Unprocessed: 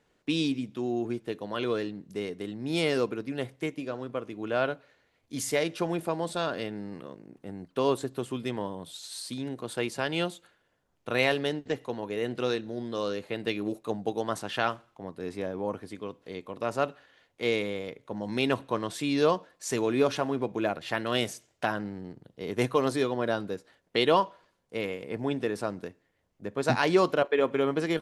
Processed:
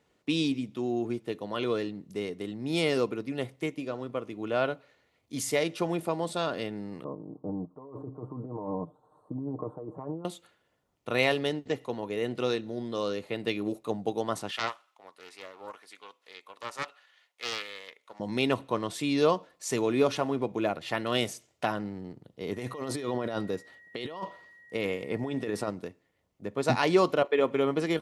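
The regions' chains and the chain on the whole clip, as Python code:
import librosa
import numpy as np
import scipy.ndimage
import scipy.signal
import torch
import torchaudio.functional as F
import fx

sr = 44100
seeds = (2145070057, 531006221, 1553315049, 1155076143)

y = fx.chain(x, sr, fx.ellip_lowpass(hz=1100.0, order=4, stop_db=50),
    fx.over_compress(threshold_db=-38.0, ratio=-1.0),
    fx.comb(ms=6.6, depth=0.6), at=(7.04, 10.25))
y = fx.chain(y, sr, fx.highpass(hz=1100.0, slope=12),
    fx.doppler_dist(depth_ms=0.37), at=(14.51, 18.2))
y = fx.over_compress(y, sr, threshold_db=-32.0, ratio=-1.0, at=(22.51, 25.69), fade=0.02)
y = fx.dmg_tone(y, sr, hz=1900.0, level_db=-52.0, at=(22.51, 25.69), fade=0.02)
y = scipy.signal.sosfilt(scipy.signal.butter(2, 44.0, 'highpass', fs=sr, output='sos'), y)
y = fx.notch(y, sr, hz=1600.0, q=8.4)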